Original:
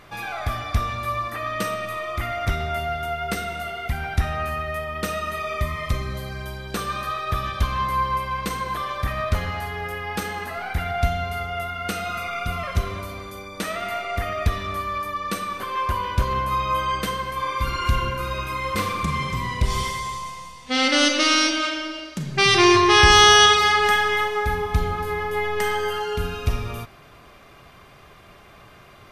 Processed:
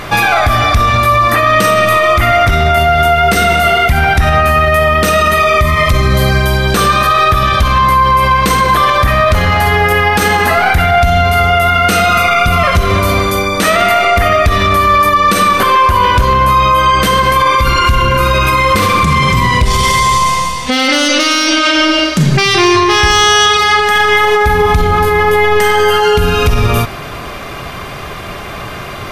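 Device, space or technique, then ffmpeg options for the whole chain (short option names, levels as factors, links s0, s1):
loud club master: -af "acompressor=threshold=0.0562:ratio=2,asoftclip=type=hard:threshold=0.178,alimiter=level_in=16.8:limit=0.891:release=50:level=0:latency=1,volume=0.891"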